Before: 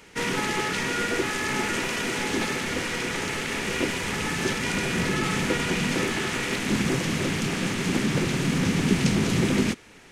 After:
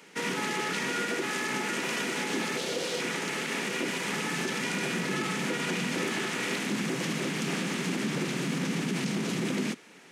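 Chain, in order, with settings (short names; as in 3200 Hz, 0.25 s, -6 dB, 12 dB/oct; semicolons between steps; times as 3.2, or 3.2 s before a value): 2.57–3 graphic EQ 250/500/1000/2000/4000 Hz -7/+9/-4/-7/+6 dB; limiter -18.5 dBFS, peak gain reduction 9.5 dB; steep high-pass 150 Hz 36 dB/oct; gain -2.5 dB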